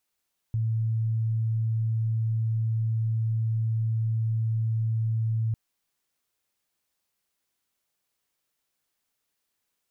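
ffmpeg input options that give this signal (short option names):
-f lavfi -i "sine=f=112:d=5:r=44100,volume=-4.94dB"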